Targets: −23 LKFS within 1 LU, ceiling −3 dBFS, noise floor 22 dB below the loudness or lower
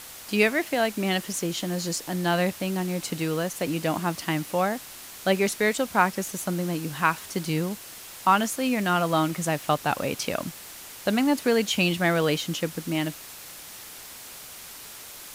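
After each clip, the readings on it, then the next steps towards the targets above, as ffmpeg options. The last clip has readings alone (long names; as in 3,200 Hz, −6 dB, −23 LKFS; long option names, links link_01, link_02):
background noise floor −43 dBFS; target noise floor −48 dBFS; integrated loudness −26.0 LKFS; sample peak −6.0 dBFS; target loudness −23.0 LKFS
→ -af "afftdn=noise_reduction=6:noise_floor=-43"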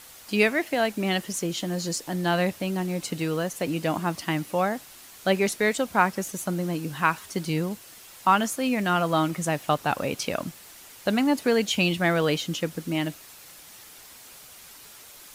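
background noise floor −48 dBFS; integrated loudness −26.0 LKFS; sample peak −6.5 dBFS; target loudness −23.0 LKFS
→ -af "volume=3dB"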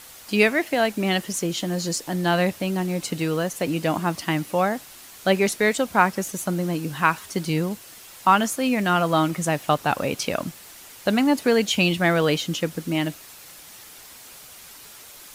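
integrated loudness −23.0 LKFS; sample peak −3.5 dBFS; background noise floor −45 dBFS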